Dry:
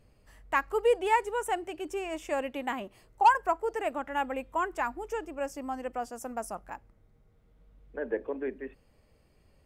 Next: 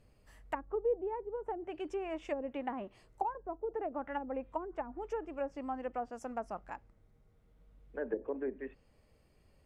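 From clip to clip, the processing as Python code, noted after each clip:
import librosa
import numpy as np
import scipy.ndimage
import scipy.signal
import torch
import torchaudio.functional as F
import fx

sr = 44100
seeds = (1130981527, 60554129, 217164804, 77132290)

y = fx.env_lowpass_down(x, sr, base_hz=410.0, full_db=-26.0)
y = F.gain(torch.from_numpy(y), -3.0).numpy()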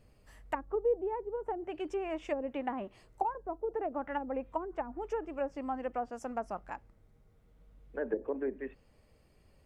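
y = fx.vibrato(x, sr, rate_hz=13.0, depth_cents=24.0)
y = F.gain(torch.from_numpy(y), 2.5).numpy()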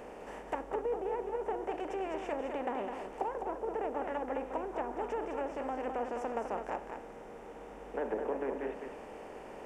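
y = fx.bin_compress(x, sr, power=0.4)
y = y + 10.0 ** (-6.0 / 20.0) * np.pad(y, (int(207 * sr / 1000.0), 0))[:len(y)]
y = F.gain(torch.from_numpy(y), -7.0).numpy()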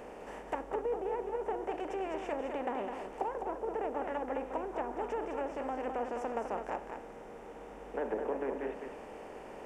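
y = x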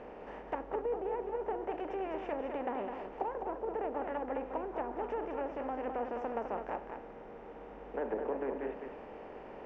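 y = fx.air_absorb(x, sr, metres=240.0)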